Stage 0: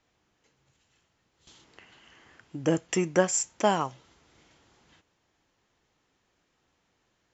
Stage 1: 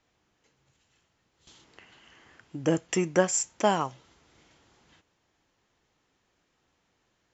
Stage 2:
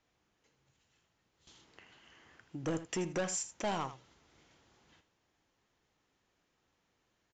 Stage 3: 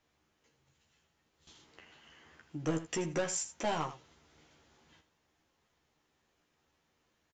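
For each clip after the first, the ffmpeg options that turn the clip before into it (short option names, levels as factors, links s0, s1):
-af anull
-af "aresample=16000,asoftclip=type=tanh:threshold=0.0596,aresample=44100,aecho=1:1:80:0.224,volume=0.562"
-filter_complex "[0:a]asplit=2[s0][s1];[s1]adelay=13,volume=0.631[s2];[s0][s2]amix=inputs=2:normalize=0"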